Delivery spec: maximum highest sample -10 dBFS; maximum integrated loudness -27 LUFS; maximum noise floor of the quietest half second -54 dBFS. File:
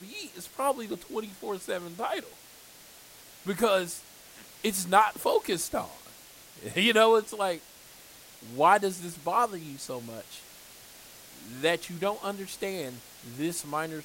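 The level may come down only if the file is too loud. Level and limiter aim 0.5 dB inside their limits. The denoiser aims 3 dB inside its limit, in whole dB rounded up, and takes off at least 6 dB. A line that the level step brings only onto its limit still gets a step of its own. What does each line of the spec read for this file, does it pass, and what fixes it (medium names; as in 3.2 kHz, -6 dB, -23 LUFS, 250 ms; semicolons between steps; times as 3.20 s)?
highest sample -7.0 dBFS: fail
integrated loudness -28.5 LUFS: pass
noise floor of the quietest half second -52 dBFS: fail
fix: noise reduction 6 dB, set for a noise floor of -52 dBFS; peak limiter -10.5 dBFS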